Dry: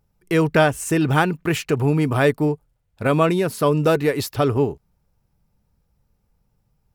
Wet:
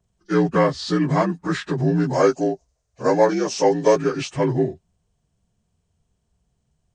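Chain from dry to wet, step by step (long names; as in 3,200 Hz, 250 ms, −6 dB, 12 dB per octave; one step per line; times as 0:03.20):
partials spread apart or drawn together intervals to 82%
0:02.13–0:03.96: graphic EQ with 15 bands 160 Hz −9 dB, 630 Hz +8 dB, 6,300 Hz +11 dB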